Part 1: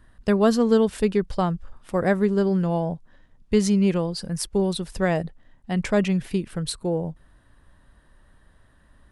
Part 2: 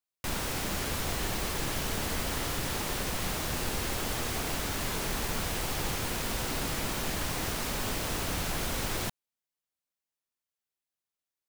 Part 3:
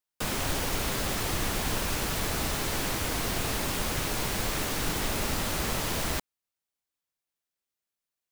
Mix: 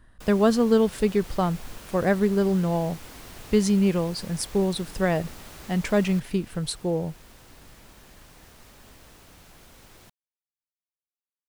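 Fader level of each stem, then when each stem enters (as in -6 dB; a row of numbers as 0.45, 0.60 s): -1.0, -19.0, -14.5 dB; 0.00, 1.00, 0.00 s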